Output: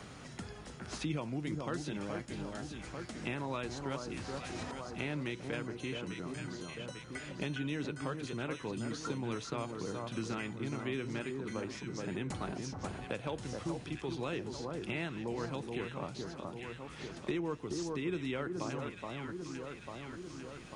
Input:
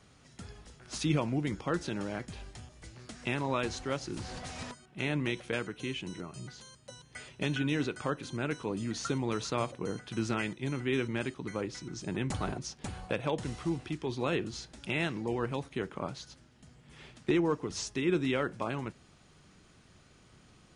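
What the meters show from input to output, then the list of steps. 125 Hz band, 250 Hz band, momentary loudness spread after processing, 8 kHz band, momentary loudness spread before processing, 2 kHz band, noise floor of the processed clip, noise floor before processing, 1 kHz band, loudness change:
−4.0 dB, −4.5 dB, 7 LU, −5.0 dB, 17 LU, −4.5 dB, −49 dBFS, −60 dBFS, −4.0 dB, −5.5 dB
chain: on a send: delay that swaps between a low-pass and a high-pass 423 ms, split 1,400 Hz, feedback 62%, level −5.5 dB
on the sum: multiband upward and downward compressor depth 70%
level −6 dB

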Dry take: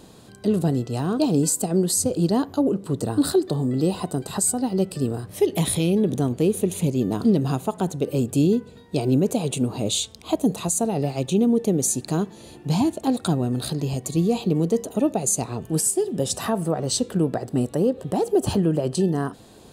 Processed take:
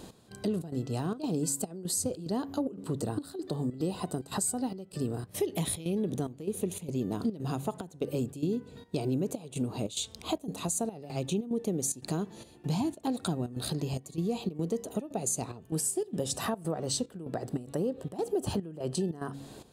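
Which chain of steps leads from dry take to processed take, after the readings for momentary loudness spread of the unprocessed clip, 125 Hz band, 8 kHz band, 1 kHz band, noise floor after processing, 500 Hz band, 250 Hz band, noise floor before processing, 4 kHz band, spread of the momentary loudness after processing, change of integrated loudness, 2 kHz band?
6 LU, −10.5 dB, −8.5 dB, −9.0 dB, −54 dBFS, −10.5 dB, −11.0 dB, −47 dBFS, −8.5 dB, 5 LU, −10.5 dB, −8.0 dB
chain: hum removal 138.9 Hz, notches 2
downward compressor 2.5 to 1, threshold −32 dBFS, peak gain reduction 12 dB
gate pattern "x..xxx.xxxx.xxx" 146 BPM −12 dB

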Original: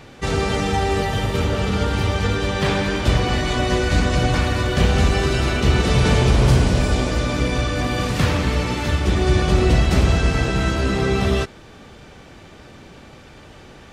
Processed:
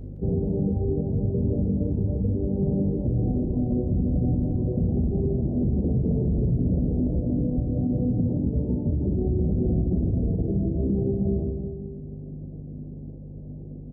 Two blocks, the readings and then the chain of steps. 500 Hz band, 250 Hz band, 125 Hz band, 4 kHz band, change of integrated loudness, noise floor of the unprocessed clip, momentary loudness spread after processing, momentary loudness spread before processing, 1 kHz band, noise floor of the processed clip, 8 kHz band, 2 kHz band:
−8.0 dB, −1.5 dB, −4.5 dB, below −40 dB, −6.0 dB, −43 dBFS, 14 LU, 5 LU, −24.5 dB, −38 dBFS, below −40 dB, below −40 dB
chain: Gaussian smoothing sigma 21 samples
reverb reduction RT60 1.2 s
low-shelf EQ 67 Hz −11 dB
in parallel at −0.5 dB: downward compressor 6 to 1, threshold −32 dBFS, peak gain reduction 15 dB
on the sum: dynamic equaliser 200 Hz, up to +4 dB, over −36 dBFS, Q 4.3
mains hum 50 Hz, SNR 14 dB
on a send: single-tap delay 165 ms −7.5 dB
on the sum: dense smooth reverb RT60 1.9 s, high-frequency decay 0.5×, DRR 4 dB
brickwall limiter −16 dBFS, peak gain reduction 9 dB

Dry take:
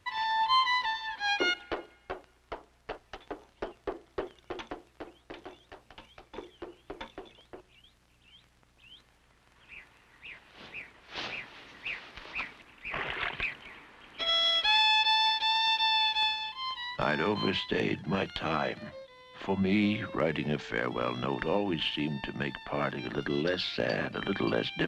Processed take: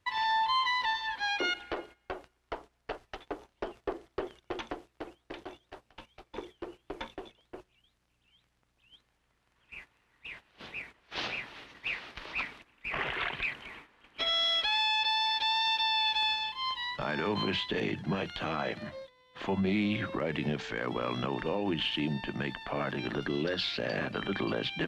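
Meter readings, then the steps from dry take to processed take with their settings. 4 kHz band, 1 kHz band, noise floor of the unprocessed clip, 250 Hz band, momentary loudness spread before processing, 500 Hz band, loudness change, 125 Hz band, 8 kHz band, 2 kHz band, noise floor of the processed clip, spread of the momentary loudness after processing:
−2.0 dB, −2.0 dB, −65 dBFS, −1.5 dB, 21 LU, −2.0 dB, −2.0 dB, −0.5 dB, −1.5 dB, −1.5 dB, −75 dBFS, 19 LU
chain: noise gate −50 dBFS, range −12 dB
brickwall limiter −24 dBFS, peak gain reduction 8 dB
level +2 dB

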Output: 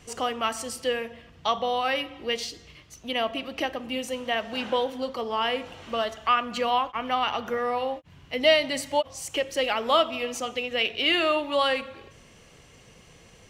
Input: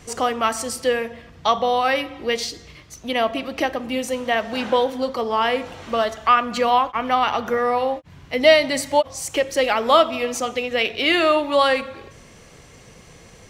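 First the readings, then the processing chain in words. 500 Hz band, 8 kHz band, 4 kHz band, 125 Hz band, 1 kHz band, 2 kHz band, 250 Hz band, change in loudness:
−7.0 dB, −7.0 dB, −2.5 dB, −7.0 dB, −7.0 dB, −5.5 dB, −7.0 dB, −6.0 dB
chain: parametric band 2,900 Hz +6.5 dB 0.32 octaves
level −7 dB

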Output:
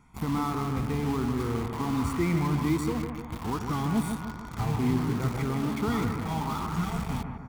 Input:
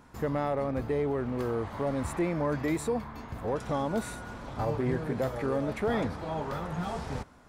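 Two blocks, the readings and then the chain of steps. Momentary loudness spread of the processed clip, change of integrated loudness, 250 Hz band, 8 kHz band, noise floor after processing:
6 LU, +2.5 dB, +4.5 dB, +3.5 dB, −40 dBFS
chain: rippled gain that drifts along the octave scale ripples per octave 0.52, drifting +1.3 Hz, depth 7 dB
dynamic equaliser 200 Hz, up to +4 dB, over −40 dBFS, Q 1.2
comb filter 0.9 ms, depth 97%
in parallel at −3.5 dB: bit reduction 5 bits
on the sum: bucket-brigade delay 150 ms, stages 2,048, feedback 53%, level −6 dB
level −7.5 dB

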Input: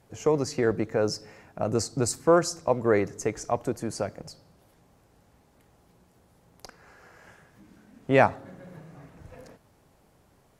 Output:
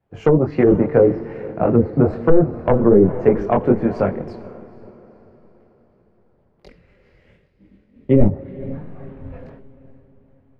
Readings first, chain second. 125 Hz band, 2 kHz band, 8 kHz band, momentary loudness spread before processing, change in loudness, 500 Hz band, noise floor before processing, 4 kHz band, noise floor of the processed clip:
+12.5 dB, −1.5 dB, below −25 dB, 13 LU, +9.5 dB, +9.0 dB, −62 dBFS, below −10 dB, −59 dBFS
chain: wavefolder on the positive side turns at −18.5 dBFS
noise gate −54 dBFS, range −7 dB
high-frequency loss of the air 500 metres
gain on a spectral selection 0:06.65–0:08.72, 620–1,800 Hz −13 dB
multi-voice chorus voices 6, 1.3 Hz, delay 23 ms, depth 3 ms
treble cut that deepens with the level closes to 430 Hz, closed at −23.5 dBFS
on a send: feedback delay with all-pass diffusion 472 ms, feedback 56%, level −14.5 dB
on the sum: boost into a limiter +19.5 dB
multiband upward and downward expander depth 40%
level −2.5 dB

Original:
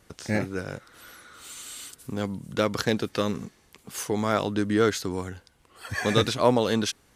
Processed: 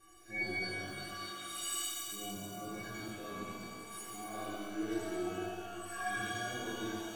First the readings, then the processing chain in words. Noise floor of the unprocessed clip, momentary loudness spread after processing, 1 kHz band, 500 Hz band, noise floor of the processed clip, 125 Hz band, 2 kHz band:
−61 dBFS, 8 LU, −10.5 dB, −17.0 dB, −49 dBFS, −17.5 dB, −6.5 dB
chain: harmonic-percussive split with one part muted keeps harmonic
reversed playback
downward compressor, threshold −38 dBFS, peak gain reduction 18.5 dB
reversed playback
stiff-string resonator 340 Hz, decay 0.36 s, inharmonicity 0.03
reverb with rising layers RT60 2.4 s, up +12 semitones, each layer −8 dB, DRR −9.5 dB
level +14.5 dB

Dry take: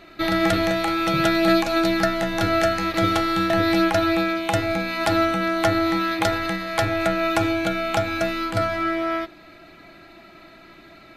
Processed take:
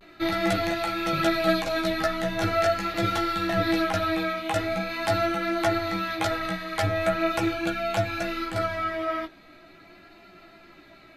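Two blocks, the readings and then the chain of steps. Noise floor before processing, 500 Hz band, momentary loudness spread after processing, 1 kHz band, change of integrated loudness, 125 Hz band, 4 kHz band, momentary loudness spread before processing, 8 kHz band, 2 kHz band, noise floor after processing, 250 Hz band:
−47 dBFS, −4.0 dB, 5 LU, −4.0 dB, −4.5 dB, −3.5 dB, −4.5 dB, 5 LU, −4.5 dB, −4.5 dB, −52 dBFS, −6.5 dB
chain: multi-voice chorus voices 4, 0.52 Hz, delay 15 ms, depth 4.8 ms
pitch vibrato 0.41 Hz 35 cents
level −1.5 dB

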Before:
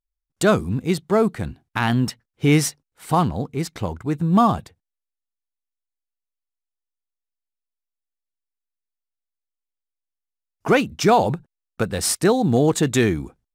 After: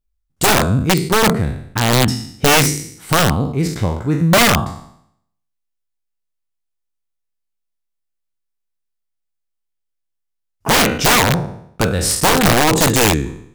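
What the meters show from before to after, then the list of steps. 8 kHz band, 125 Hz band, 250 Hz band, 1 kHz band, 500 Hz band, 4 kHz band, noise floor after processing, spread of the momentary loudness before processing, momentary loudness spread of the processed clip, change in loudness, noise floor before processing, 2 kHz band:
+10.5 dB, +5.5 dB, +2.5 dB, +5.5 dB, +2.5 dB, +13.0 dB, −75 dBFS, 11 LU, 9 LU, +6.0 dB, −85 dBFS, +10.5 dB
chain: peak hold with a decay on every bin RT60 0.68 s
low-shelf EQ 180 Hz +9.5 dB
wrap-around overflow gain 8 dB
level +1.5 dB

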